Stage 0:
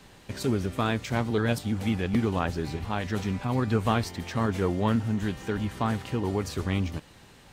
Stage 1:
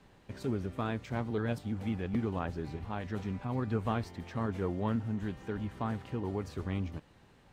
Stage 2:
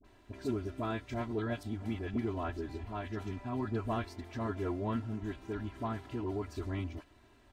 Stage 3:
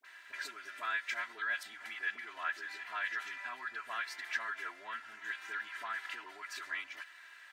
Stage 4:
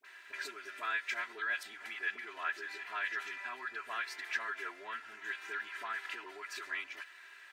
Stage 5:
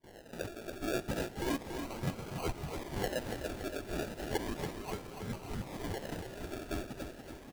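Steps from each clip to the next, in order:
treble shelf 2.9 kHz -11 dB; trim -7 dB
comb 3 ms, depth 85%; phase dispersion highs, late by 46 ms, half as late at 870 Hz; trim -3 dB
compression, threshold -38 dBFS, peak gain reduction 9 dB; resonant high-pass 1.7 kHz, resonance Q 3.5; trim +8.5 dB
small resonant body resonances 400/2500 Hz, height 9 dB, ringing for 30 ms
decimation with a swept rate 34×, swing 60% 0.34 Hz; feedback delay 284 ms, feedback 54%, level -7 dB; trim +1 dB

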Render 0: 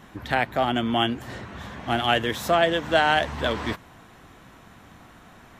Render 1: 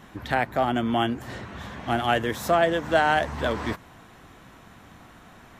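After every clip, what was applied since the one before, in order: dynamic bell 3.2 kHz, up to -7 dB, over -39 dBFS, Q 1.3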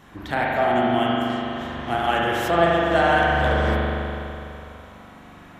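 hum notches 60/120/180/240 Hz; spring tank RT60 2.9 s, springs 41 ms, chirp 35 ms, DRR -4.5 dB; trim -1.5 dB

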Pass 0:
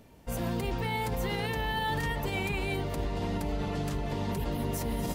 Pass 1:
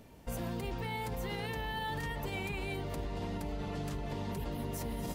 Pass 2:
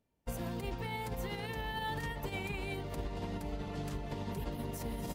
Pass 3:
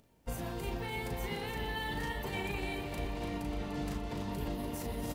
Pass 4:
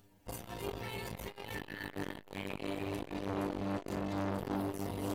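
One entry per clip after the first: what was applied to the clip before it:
compression 3:1, threshold -36 dBFS, peak gain reduction 7 dB
upward expansion 2.5:1, over -53 dBFS; trim +2 dB
upward compressor, threshold -57 dBFS; doubling 37 ms -4 dB; feedback delay 295 ms, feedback 59%, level -8 dB
inharmonic resonator 98 Hz, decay 0.27 s, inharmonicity 0.002; reverberation RT60 2.8 s, pre-delay 190 ms, DRR 13.5 dB; transformer saturation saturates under 870 Hz; trim +11.5 dB

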